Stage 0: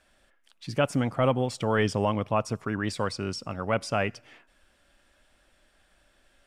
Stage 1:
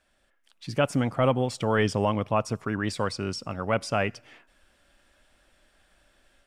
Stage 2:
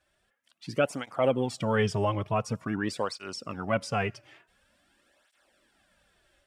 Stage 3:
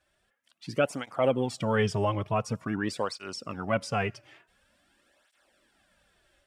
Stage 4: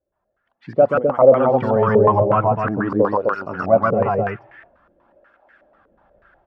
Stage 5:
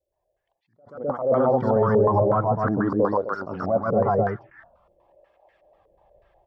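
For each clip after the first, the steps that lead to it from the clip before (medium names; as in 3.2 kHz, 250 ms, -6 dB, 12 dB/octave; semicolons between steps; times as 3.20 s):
level rider gain up to 6 dB; trim -5 dB
cancelling through-zero flanger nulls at 0.47 Hz, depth 4.5 ms
no audible change
level rider gain up to 12.5 dB; on a send: loudspeakers at several distances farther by 45 m -2 dB, 89 m -3 dB; on the sum: step-sequenced low-pass 8.2 Hz 480–1700 Hz; trim -6.5 dB
peak limiter -10 dBFS, peak gain reduction 9 dB; touch-sensitive phaser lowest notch 230 Hz, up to 2.6 kHz, full sweep at -21.5 dBFS; attacks held to a fixed rise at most 120 dB/s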